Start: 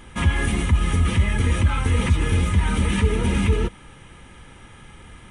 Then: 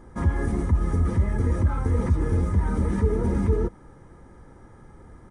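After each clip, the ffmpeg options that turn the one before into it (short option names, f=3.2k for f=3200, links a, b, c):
-af "firequalizer=gain_entry='entry(210,0);entry(330,4);entry(1900,-9);entry(2700,-26);entry(4900,-8);entry(10000,-13)':delay=0.05:min_phase=1,volume=-3dB"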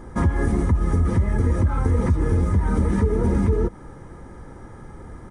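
-af "acompressor=threshold=-25dB:ratio=3,volume=8dB"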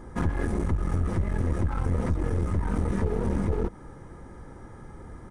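-af "aeval=exprs='clip(val(0),-1,0.0501)':c=same,volume=-4dB"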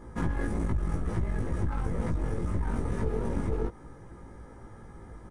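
-filter_complex "[0:a]asplit=2[a][b];[b]adelay=18,volume=-2.5dB[c];[a][c]amix=inputs=2:normalize=0,volume=-5dB"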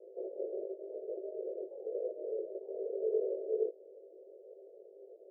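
-af "asuperpass=centerf=490:order=12:qfactor=1.8,volume=3.5dB"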